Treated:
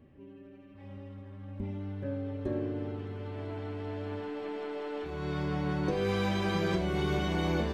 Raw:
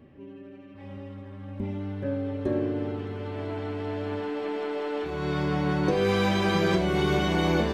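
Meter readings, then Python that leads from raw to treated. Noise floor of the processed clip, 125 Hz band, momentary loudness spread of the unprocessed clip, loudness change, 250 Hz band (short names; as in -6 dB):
-52 dBFS, -4.5 dB, 18 LU, -6.0 dB, -6.0 dB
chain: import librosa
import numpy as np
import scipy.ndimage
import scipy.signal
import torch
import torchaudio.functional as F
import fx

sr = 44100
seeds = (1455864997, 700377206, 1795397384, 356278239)

y = fx.low_shelf(x, sr, hz=80.0, db=9.0)
y = y * 10.0 ** (-7.0 / 20.0)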